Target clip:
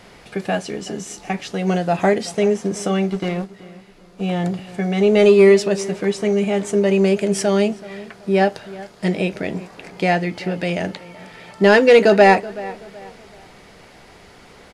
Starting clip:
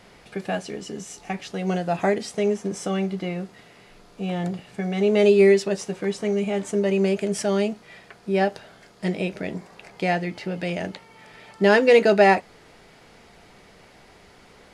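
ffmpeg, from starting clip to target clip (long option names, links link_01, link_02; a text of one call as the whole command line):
ffmpeg -i in.wav -filter_complex "[0:a]acontrast=39,asettb=1/sr,asplit=3[link_01][link_02][link_03];[link_01]atrim=end=3.104[link_04];[link_02]atrim=start=3.1:end=4.21,asetpts=PTS-STARTPTS,afade=type=in:duration=0.004:curve=qsin,afade=type=out:start_time=1.106:duration=0.004:curve=qsin,aeval=exprs='0.251*(cos(1*acos(clip(val(0)/0.251,-1,1)))-cos(1*PI/2))+0.0126*(cos(5*acos(clip(val(0)/0.251,-1,1)))-cos(5*PI/2))+0.0282*(cos(7*acos(clip(val(0)/0.251,-1,1)))-cos(7*PI/2))':channel_layout=same[link_05];[link_03]atrim=start=4.206[link_06];[link_04][link_05]acrossfade=duration=0.004:curve1=hsin:curve2=qsin[link_07];[link_07][link_06]acrossfade=duration=0.004:curve1=qsin:curve2=hsin,asplit=2[link_08][link_09];[link_09]adelay=378,lowpass=frequency=2700:poles=1,volume=-18dB,asplit=2[link_10][link_11];[link_11]adelay=378,lowpass=frequency=2700:poles=1,volume=0.36,asplit=2[link_12][link_13];[link_13]adelay=378,lowpass=frequency=2700:poles=1,volume=0.36[link_14];[link_08][link_10][link_12][link_14]amix=inputs=4:normalize=0" out.wav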